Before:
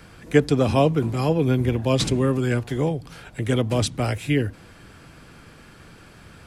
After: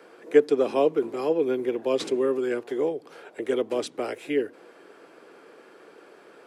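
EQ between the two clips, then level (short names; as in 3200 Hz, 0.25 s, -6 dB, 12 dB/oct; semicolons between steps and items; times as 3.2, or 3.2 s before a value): high shelf 2200 Hz -10.5 dB; dynamic EQ 650 Hz, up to -6 dB, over -33 dBFS, Q 0.83; ladder high-pass 350 Hz, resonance 50%; +8.5 dB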